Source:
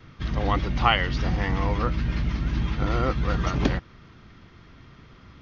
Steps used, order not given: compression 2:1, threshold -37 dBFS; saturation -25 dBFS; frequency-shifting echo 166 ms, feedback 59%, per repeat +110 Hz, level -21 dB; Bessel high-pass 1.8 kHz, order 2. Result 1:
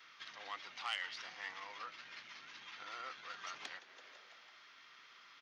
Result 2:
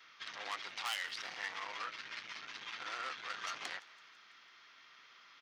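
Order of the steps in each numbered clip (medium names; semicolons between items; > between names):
frequency-shifting echo > compression > saturation > Bessel high-pass; saturation > Bessel high-pass > compression > frequency-shifting echo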